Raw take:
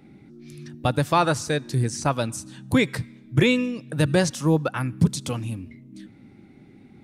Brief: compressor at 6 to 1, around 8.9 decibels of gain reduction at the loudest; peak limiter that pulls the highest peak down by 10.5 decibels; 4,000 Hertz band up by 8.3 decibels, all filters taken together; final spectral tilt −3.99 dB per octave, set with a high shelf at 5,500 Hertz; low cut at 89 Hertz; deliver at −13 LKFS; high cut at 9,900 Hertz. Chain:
high-pass filter 89 Hz
low-pass filter 9,900 Hz
parametric band 4,000 Hz +7 dB
high-shelf EQ 5,500 Hz +7.5 dB
downward compressor 6 to 1, threshold −23 dBFS
level +18.5 dB
brickwall limiter −1.5 dBFS

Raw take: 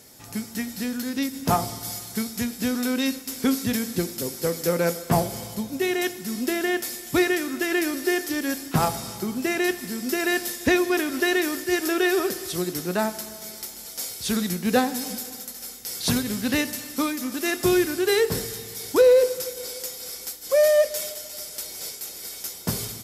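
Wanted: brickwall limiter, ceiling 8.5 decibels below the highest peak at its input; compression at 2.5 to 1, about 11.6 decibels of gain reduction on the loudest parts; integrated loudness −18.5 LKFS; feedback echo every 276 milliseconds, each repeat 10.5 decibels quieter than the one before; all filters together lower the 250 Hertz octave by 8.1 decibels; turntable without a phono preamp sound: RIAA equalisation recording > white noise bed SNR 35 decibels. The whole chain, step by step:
parametric band 250 Hz −3.5 dB
downward compressor 2.5 to 1, threshold −31 dBFS
brickwall limiter −23.5 dBFS
RIAA equalisation recording
repeating echo 276 ms, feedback 30%, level −10.5 dB
white noise bed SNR 35 dB
level +5 dB

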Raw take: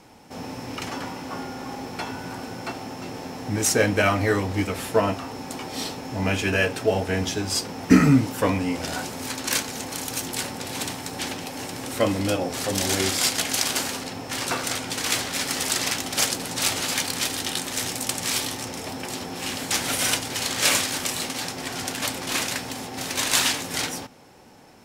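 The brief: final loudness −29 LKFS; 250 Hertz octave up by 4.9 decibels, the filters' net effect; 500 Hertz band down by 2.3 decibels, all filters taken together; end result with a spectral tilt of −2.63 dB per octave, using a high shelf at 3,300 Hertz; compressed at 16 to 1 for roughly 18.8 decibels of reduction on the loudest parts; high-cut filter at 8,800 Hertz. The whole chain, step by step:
low-pass filter 8,800 Hz
parametric band 250 Hz +7 dB
parametric band 500 Hz −5 dB
high-shelf EQ 3,300 Hz +4.5 dB
downward compressor 16 to 1, threshold −23 dBFS
level −1.5 dB

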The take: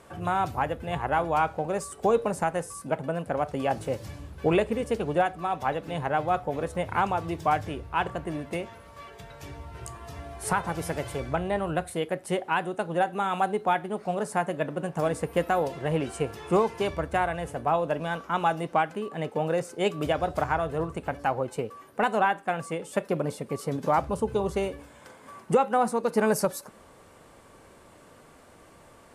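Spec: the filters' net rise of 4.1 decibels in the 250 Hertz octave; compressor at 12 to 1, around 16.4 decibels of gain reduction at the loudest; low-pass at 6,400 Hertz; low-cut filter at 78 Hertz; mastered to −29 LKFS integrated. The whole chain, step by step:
high-pass filter 78 Hz
low-pass filter 6,400 Hz
parametric band 250 Hz +6 dB
downward compressor 12 to 1, threshold −32 dBFS
level +9 dB

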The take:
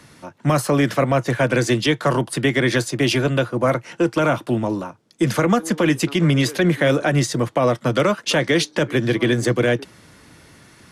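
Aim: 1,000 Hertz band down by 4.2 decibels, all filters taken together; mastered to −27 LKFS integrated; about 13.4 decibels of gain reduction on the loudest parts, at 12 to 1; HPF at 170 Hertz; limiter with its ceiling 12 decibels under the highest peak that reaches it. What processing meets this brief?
high-pass filter 170 Hz
parametric band 1,000 Hz −6 dB
downward compressor 12 to 1, threshold −28 dBFS
level +11 dB
brickwall limiter −17.5 dBFS

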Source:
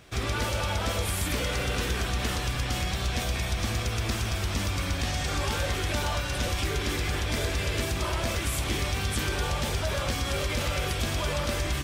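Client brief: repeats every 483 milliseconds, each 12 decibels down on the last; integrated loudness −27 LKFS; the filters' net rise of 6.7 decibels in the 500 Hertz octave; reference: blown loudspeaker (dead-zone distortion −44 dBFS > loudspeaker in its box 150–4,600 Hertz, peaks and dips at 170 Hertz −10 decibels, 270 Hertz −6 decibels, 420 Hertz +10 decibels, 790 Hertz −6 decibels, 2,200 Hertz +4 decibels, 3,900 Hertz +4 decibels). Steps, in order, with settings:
parametric band 500 Hz +4 dB
repeating echo 483 ms, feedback 25%, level −12 dB
dead-zone distortion −44 dBFS
loudspeaker in its box 150–4,600 Hz, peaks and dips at 170 Hz −10 dB, 270 Hz −6 dB, 420 Hz +10 dB, 790 Hz −6 dB, 2,200 Hz +4 dB, 3,900 Hz +4 dB
level +2 dB

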